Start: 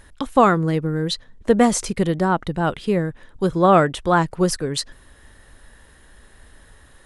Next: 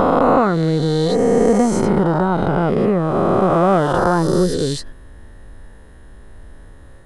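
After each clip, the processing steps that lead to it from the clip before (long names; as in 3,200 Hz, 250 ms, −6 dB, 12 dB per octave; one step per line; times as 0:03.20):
peak hold with a rise ahead of every peak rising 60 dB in 2.95 s
tilt shelving filter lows +7.5 dB, about 1,200 Hz
downward compressor 2 to 1, threshold −12 dBFS, peak gain reduction 6 dB
level −2 dB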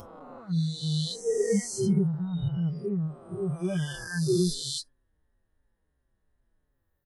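peak hold with a rise ahead of every peak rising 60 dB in 2.34 s
noise reduction from a noise print of the clip's start 29 dB
barber-pole flanger 5.4 ms −2.8 Hz
level −3.5 dB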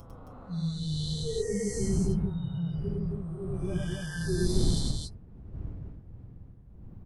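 wind on the microphone 110 Hz −31 dBFS
parametric band 570 Hz −2 dB
loudspeakers that aren't time-aligned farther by 34 metres 0 dB, 92 metres −2 dB
level −7.5 dB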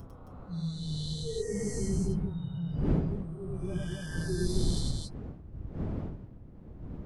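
wind on the microphone 190 Hz −36 dBFS
level −3 dB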